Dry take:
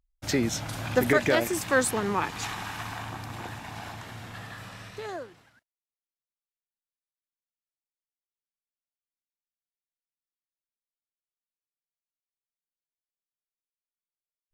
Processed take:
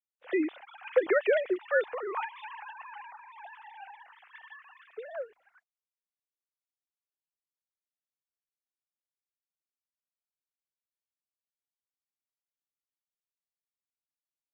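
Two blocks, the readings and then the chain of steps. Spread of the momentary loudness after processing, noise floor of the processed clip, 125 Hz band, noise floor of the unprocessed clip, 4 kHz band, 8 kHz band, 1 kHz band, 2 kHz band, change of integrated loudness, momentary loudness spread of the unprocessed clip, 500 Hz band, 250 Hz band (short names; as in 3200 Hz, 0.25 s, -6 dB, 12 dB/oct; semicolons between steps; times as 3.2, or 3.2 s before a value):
22 LU, under -85 dBFS, under -40 dB, under -85 dBFS, -15.5 dB, under -40 dB, -7.0 dB, -5.0 dB, -2.5 dB, 18 LU, -0.5 dB, -6.5 dB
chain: sine-wave speech; gain -3.5 dB; Opus 32 kbps 48000 Hz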